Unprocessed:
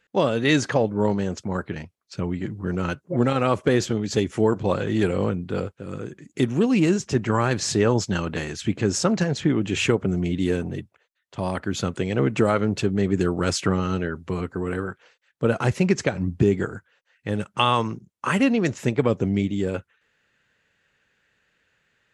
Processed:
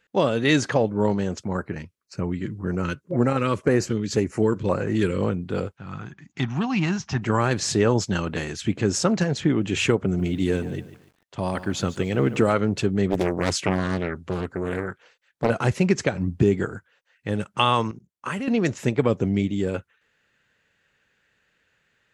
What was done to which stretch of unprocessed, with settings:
1.53–5.23 LFO notch square 1.9 Hz 730–3400 Hz
5.77–7.22 EQ curve 170 Hz 0 dB, 500 Hz -16 dB, 770 Hz +7 dB, 2300 Hz +1 dB, 6000 Hz -1 dB, 9100 Hz -22 dB
10.04–12.53 lo-fi delay 0.145 s, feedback 35%, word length 8-bit, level -14 dB
13.1–15.5 Doppler distortion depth 0.77 ms
17.91–18.48 level quantiser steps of 14 dB

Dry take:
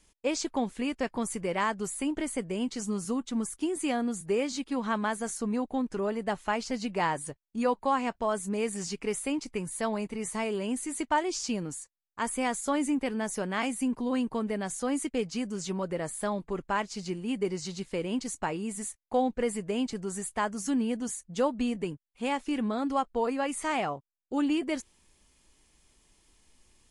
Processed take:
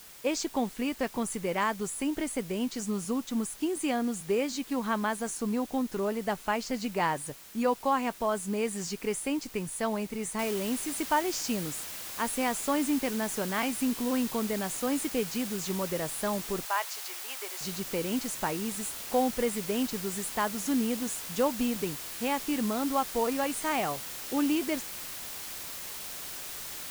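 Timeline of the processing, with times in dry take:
10.39 noise floor step -50 dB -40 dB
16.65–17.61 HPF 620 Hz 24 dB/oct

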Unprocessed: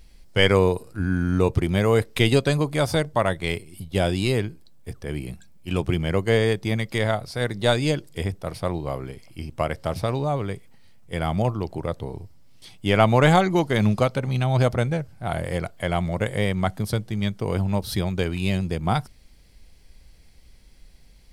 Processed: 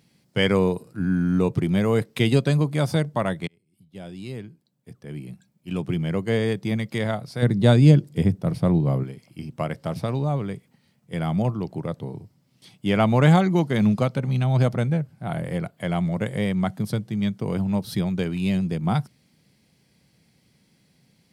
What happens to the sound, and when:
3.47–6.67 fade in
7.42–9.03 low shelf 400 Hz +11 dB
14.86–15.8 dynamic EQ 5800 Hz, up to -6 dB, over -57 dBFS, Q 1.5
whole clip: HPF 140 Hz 24 dB/oct; tone controls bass +11 dB, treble -1 dB; gain -4 dB

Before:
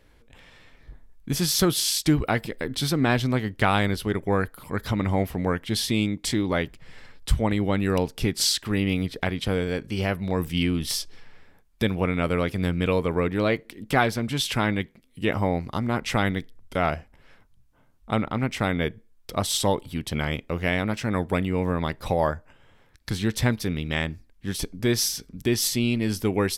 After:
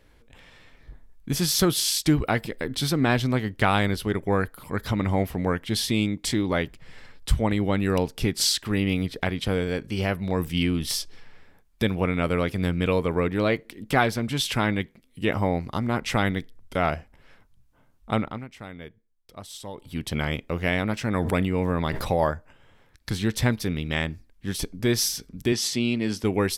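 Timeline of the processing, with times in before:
18.17–20.01 dip -15.5 dB, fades 0.28 s
21.18–22.24 sustainer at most 28 dB/s
25.52–26.24 BPF 140–7700 Hz

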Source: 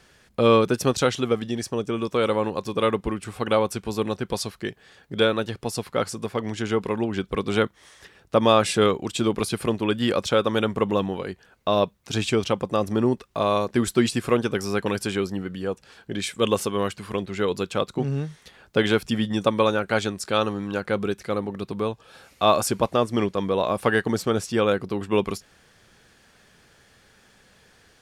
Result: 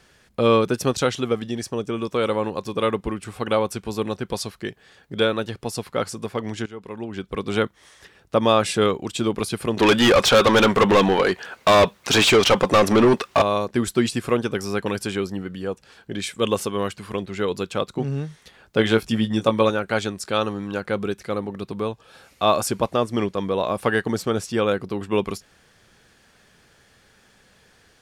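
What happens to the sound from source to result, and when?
6.66–7.57 fade in, from -19 dB
9.77–13.42 overdrive pedal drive 27 dB, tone 4400 Hz, clips at -6.5 dBFS
18.77–19.7 doubler 18 ms -6 dB

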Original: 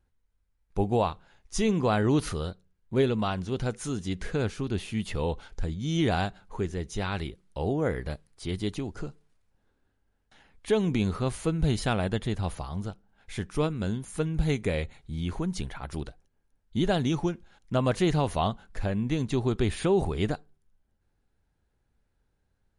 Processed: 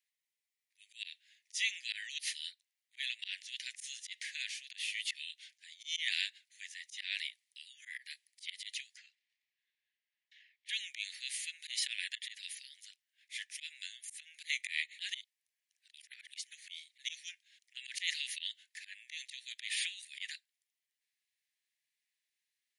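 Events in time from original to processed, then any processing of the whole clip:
8.97–10.69 LPF 3700 Hz
14.99–16.98 reverse
whole clip: steep high-pass 1800 Hz 96 dB/oct; dynamic EQ 2900 Hz, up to +4 dB, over -47 dBFS, Q 0.74; auto swell 0.111 s; gain +1.5 dB

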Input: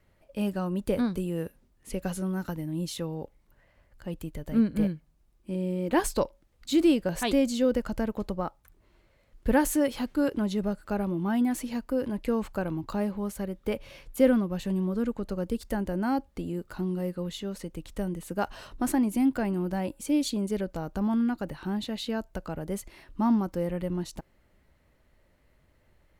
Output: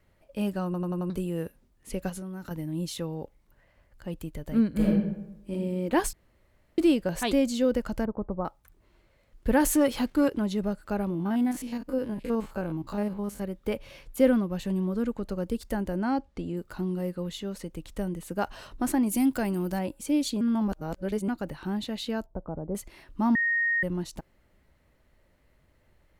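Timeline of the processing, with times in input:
0.65 stutter in place 0.09 s, 5 plays
2.09–2.51 compressor 10:1, threshold -34 dBFS
4.71–5.52 reverb throw, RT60 0.87 s, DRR -3 dB
6.13–6.78 room tone
8.05–8.45 inverse Chebyshev low-pass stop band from 3300 Hz, stop band 50 dB
9.6–10.28 sample leveller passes 1
11.1–13.42 stepped spectrum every 50 ms
16.02–16.57 LPF 6700 Hz
19.06–19.79 high shelf 4300 Hz +11.5 dB
20.41–21.28 reverse
22.26–22.75 LPF 1000 Hz 24 dB/oct
23.35–23.83 bleep 1860 Hz -22.5 dBFS

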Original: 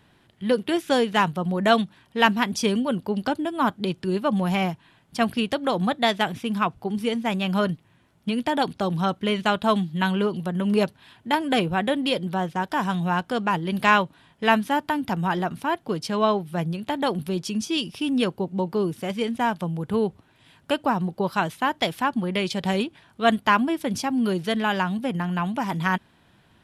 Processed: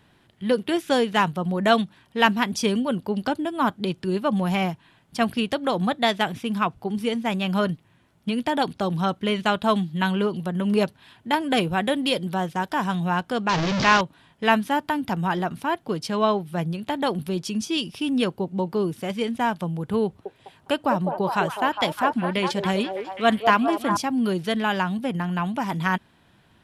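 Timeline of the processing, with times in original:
11.57–12.7 high shelf 5100 Hz +6 dB
13.49–14.01 delta modulation 32 kbps, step -17 dBFS
20.05–23.97 delay with a stepping band-pass 0.204 s, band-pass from 540 Hz, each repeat 0.7 oct, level -1.5 dB

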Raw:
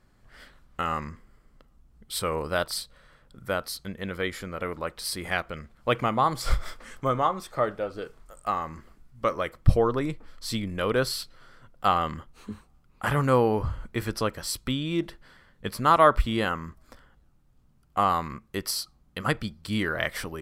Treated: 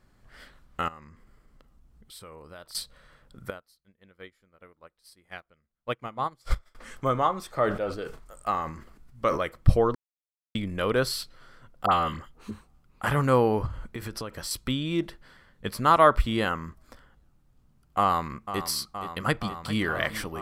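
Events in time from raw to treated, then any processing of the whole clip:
0.88–2.75 compressor 2.5:1, threshold -51 dBFS
3.5–6.75 upward expander 2.5:1, over -37 dBFS
7.56–9.4 sustainer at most 87 dB/s
9.95–10.55 mute
11.86–12.51 dispersion highs, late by 60 ms, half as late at 1500 Hz
13.66–14.51 compressor 10:1, threshold -30 dBFS
18–18.64 echo throw 0.47 s, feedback 85%, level -11 dB
19.23–19.81 echo throw 0.4 s, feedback 35%, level -14 dB

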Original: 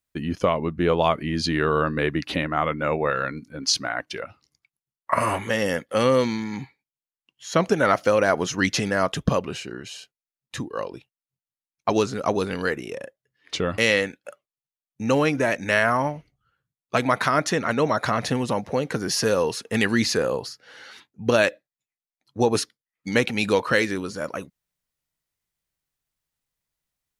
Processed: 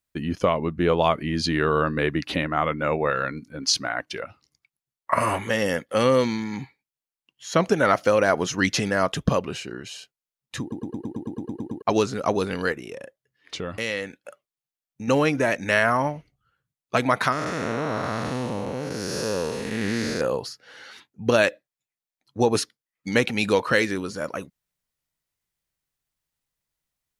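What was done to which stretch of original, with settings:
10.61 stutter in place 0.11 s, 11 plays
12.72–15.08 compressor 1.5:1, threshold -38 dBFS
17.32–20.21 time blur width 0.335 s

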